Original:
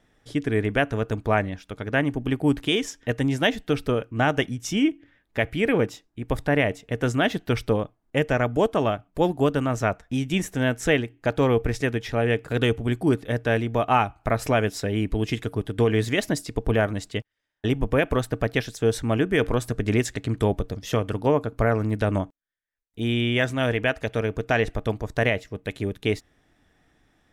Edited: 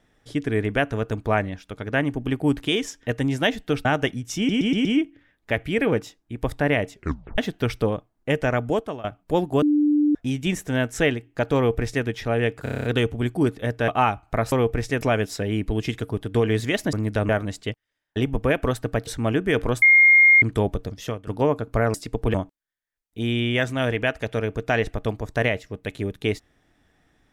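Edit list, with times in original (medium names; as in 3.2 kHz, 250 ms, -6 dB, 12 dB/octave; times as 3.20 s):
3.85–4.20 s: delete
4.72 s: stutter 0.12 s, 5 plays
6.80 s: tape stop 0.45 s
8.52–8.91 s: fade out, to -21 dB
9.49–10.02 s: bleep 296 Hz -15.5 dBFS
11.43–11.92 s: copy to 14.45 s
12.50 s: stutter 0.03 s, 8 plays
13.54–13.81 s: delete
16.37–16.77 s: swap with 21.79–22.15 s
18.55–18.92 s: delete
19.67–20.27 s: bleep 2.13 kHz -10 dBFS
20.77–21.12 s: fade out, to -18.5 dB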